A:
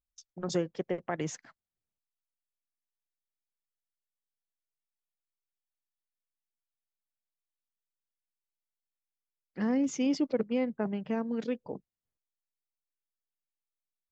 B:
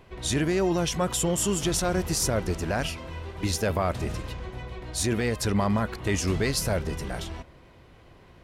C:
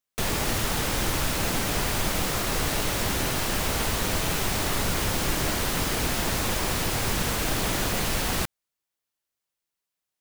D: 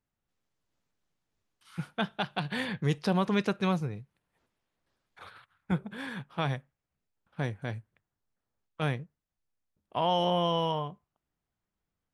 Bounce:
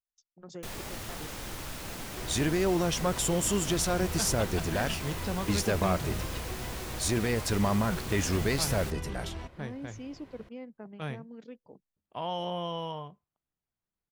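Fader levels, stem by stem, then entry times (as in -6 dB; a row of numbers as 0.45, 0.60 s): -13.5, -2.5, -13.5, -7.0 dB; 0.00, 2.05, 0.45, 2.20 s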